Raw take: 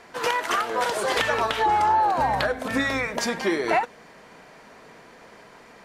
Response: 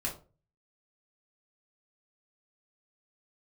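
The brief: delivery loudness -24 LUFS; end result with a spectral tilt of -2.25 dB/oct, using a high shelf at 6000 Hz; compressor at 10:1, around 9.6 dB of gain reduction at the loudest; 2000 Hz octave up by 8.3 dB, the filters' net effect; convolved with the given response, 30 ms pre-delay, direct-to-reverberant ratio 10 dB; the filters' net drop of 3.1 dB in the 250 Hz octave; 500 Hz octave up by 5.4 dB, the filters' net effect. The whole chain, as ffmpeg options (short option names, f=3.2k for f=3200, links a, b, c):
-filter_complex "[0:a]equalizer=f=250:t=o:g=-8.5,equalizer=f=500:t=o:g=8,equalizer=f=2k:t=o:g=9,highshelf=f=6k:g=5,acompressor=threshold=-23dB:ratio=10,asplit=2[a][b];[1:a]atrim=start_sample=2205,adelay=30[c];[b][c]afir=irnorm=-1:irlink=0,volume=-13.5dB[d];[a][d]amix=inputs=2:normalize=0,volume=1.5dB"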